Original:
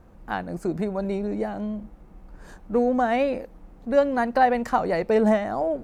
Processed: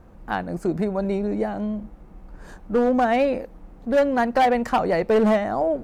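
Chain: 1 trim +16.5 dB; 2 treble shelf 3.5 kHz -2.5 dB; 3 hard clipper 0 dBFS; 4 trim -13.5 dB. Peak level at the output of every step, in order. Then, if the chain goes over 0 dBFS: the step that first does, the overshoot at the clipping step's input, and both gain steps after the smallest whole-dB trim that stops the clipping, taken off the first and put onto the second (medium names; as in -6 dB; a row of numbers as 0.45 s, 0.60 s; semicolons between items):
+8.0 dBFS, +8.0 dBFS, 0.0 dBFS, -13.5 dBFS; step 1, 8.0 dB; step 1 +8.5 dB, step 4 -5.5 dB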